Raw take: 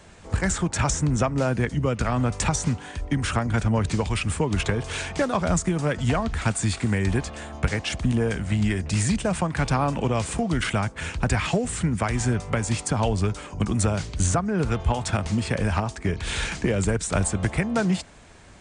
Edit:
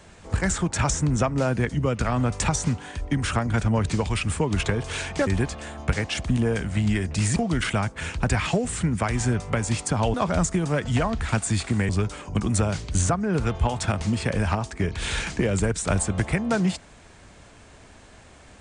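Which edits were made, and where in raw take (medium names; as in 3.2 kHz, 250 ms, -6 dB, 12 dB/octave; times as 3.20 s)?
5.27–7.02 s: move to 13.14 s
9.11–10.36 s: delete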